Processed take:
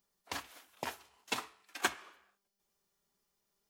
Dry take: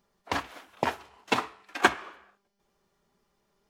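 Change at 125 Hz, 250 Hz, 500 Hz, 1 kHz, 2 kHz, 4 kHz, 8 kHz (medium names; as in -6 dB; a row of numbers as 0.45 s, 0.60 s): -14.0 dB, -14.0 dB, -13.5 dB, -12.5 dB, -10.5 dB, -6.5 dB, -1.0 dB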